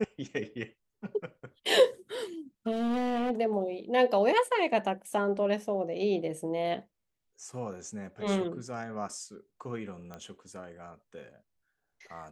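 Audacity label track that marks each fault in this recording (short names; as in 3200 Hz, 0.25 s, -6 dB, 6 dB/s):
2.710000	3.310000	clipped -26 dBFS
10.140000	10.140000	pop -28 dBFS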